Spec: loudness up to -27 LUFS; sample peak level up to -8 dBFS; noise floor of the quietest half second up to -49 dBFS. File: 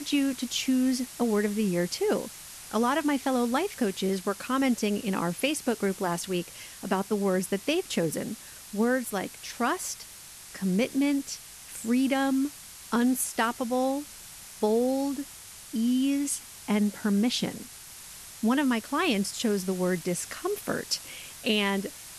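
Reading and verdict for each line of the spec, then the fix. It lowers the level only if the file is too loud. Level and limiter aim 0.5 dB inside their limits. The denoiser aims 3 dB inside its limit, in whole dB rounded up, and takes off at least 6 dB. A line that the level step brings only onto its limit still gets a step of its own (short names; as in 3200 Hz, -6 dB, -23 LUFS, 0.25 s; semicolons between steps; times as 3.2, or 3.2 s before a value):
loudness -28.0 LUFS: OK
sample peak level -13.5 dBFS: OK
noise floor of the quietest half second -46 dBFS: fail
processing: denoiser 6 dB, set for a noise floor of -46 dBFS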